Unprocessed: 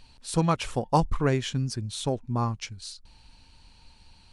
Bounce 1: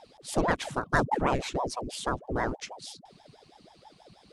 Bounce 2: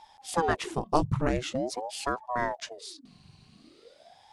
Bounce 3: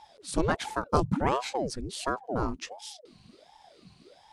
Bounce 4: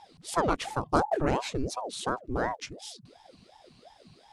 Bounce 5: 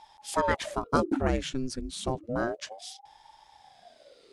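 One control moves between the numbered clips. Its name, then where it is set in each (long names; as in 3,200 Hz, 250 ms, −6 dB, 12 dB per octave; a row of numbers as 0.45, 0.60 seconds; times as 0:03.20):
ring modulator whose carrier an LFO sweeps, at: 6.2, 0.45, 1.4, 2.8, 0.3 Hertz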